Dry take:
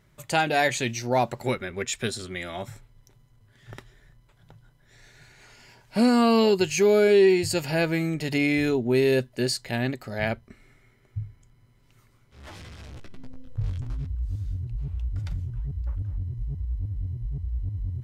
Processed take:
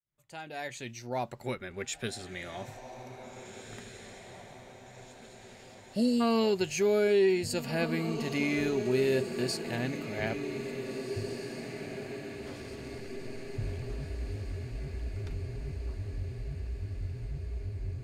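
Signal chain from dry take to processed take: opening faded in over 1.79 s; spectral delete 5.05–6.21, 680–2600 Hz; diffused feedback echo 1.834 s, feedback 58%, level -9 dB; gain -7 dB

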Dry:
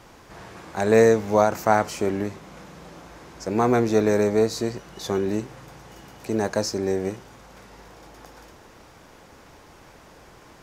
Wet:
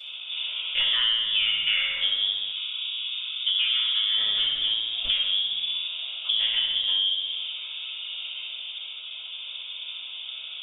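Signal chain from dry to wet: Wiener smoothing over 25 samples; inverted band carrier 3600 Hz; flutter echo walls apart 10.7 m, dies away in 0.76 s; shoebox room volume 39 m³, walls mixed, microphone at 2.4 m; compressor 6:1, threshold -23 dBFS, peak gain reduction 21 dB; 2.52–4.18 rippled Chebyshev high-pass 960 Hz, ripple 3 dB

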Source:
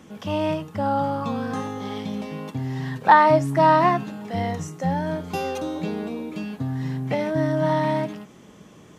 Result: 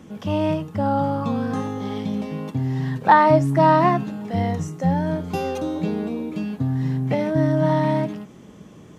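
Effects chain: low shelf 490 Hz +7 dB; gain -1.5 dB

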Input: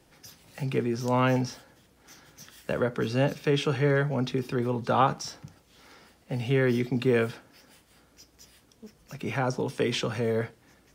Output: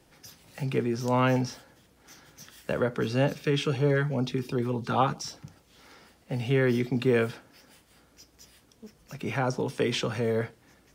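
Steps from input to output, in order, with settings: 3.42–5.42 LFO notch sine 1.6 Hz -> 7 Hz 530–2000 Hz

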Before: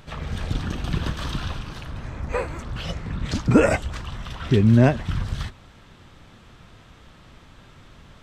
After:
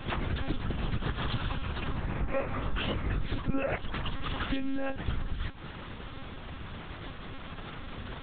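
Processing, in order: 4.44–4.9 low shelf 430 Hz -9.5 dB; compressor 4:1, threshold -37 dBFS, peak gain reduction 22 dB; monotone LPC vocoder at 8 kHz 270 Hz; 2.21–3.25 doubler 20 ms -6.5 dB; gain +7 dB

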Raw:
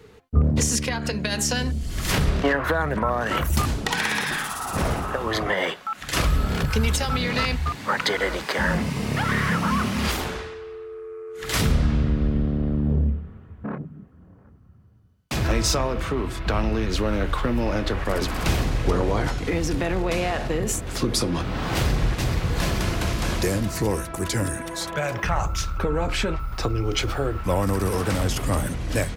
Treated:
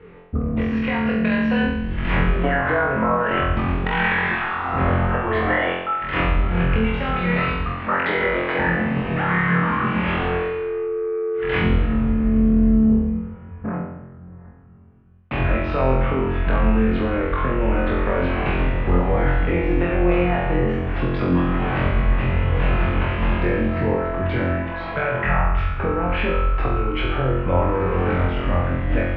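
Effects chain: steep low-pass 2700 Hz 36 dB/oct; compressor 2:1, threshold -25 dBFS, peak gain reduction 7.5 dB; flutter echo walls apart 3.9 m, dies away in 0.86 s; gain +2 dB

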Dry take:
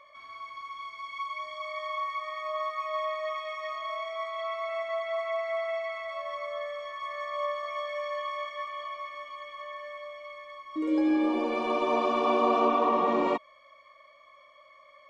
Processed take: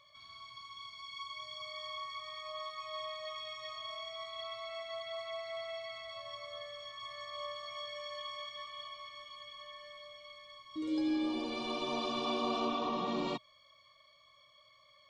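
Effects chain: graphic EQ 125/250/500/1000/2000/4000 Hz +12/-5/-10/-7/-10/+10 dB; gain -1.5 dB

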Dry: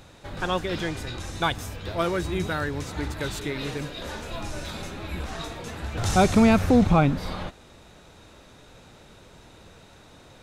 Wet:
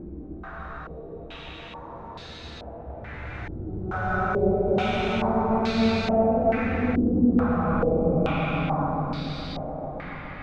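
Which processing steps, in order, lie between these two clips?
Paulstretch 4.6×, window 0.50 s, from 5.2; multi-head echo 0.286 s, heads first and second, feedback 56%, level -11.5 dB; stepped low-pass 2.3 Hz 330–4200 Hz; gain -7.5 dB

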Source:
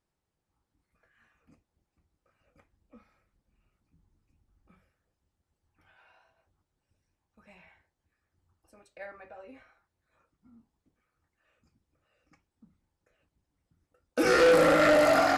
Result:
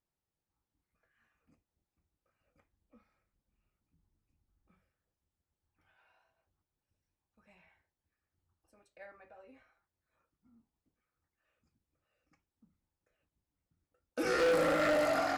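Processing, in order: 14.39–15.06 G.711 law mismatch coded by mu; gain -8.5 dB

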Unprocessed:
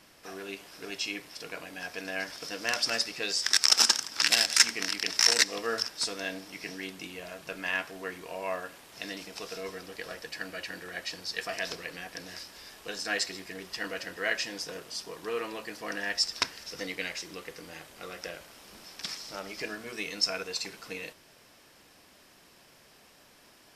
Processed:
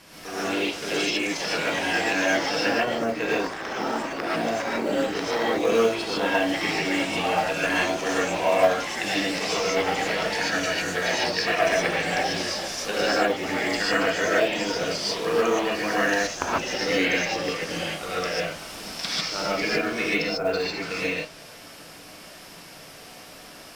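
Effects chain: treble ducked by the level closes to 650 Hz, closed at -26.5 dBFS; non-linear reverb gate 0.17 s rising, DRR -7 dB; echoes that change speed 0.119 s, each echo +3 st, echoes 3, each echo -6 dB; in parallel at -7 dB: short-mantissa float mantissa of 2-bit; on the sum: gain +3 dB

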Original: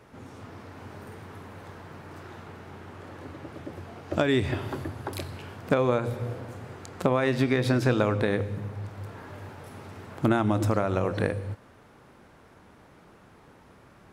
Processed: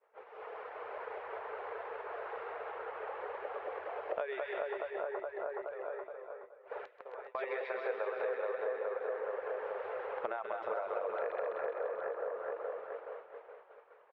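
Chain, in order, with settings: elliptic high-pass 450 Hz, stop band 40 dB; bouncing-ball echo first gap 0.2 s, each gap 0.9×, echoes 5; reverb removal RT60 0.91 s; 4.77–7.35 flipped gate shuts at -31 dBFS, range -26 dB; split-band echo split 1700 Hz, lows 0.421 s, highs 0.131 s, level -3 dB; compressor 5:1, threshold -41 dBFS, peak gain reduction 17.5 dB; LPF 2700 Hz 24 dB/oct; expander -46 dBFS; tilt shelf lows +5 dB, about 700 Hz; gain +5.5 dB

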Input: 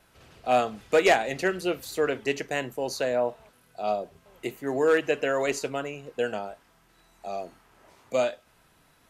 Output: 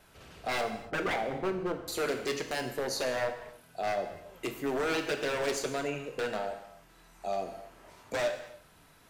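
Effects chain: 0.61–1.88 LPF 1100 Hz 24 dB/oct; in parallel at +2 dB: compressor, threshold -32 dBFS, peak gain reduction 14.5 dB; on the sum: wavefolder -20 dBFS; non-linear reverb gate 0.32 s falling, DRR 5.5 dB; gain -6 dB

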